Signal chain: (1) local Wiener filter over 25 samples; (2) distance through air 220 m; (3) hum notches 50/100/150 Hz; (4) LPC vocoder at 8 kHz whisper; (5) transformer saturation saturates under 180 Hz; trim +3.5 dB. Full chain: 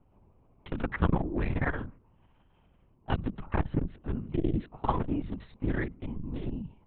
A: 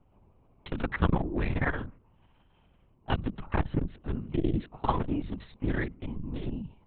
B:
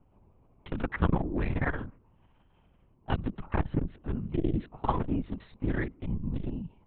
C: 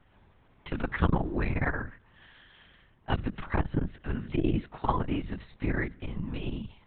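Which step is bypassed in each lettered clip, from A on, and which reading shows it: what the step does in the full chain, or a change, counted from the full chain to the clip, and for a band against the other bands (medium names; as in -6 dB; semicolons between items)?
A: 2, 4 kHz band +4.0 dB; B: 3, momentary loudness spread change -1 LU; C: 1, 4 kHz band +4.5 dB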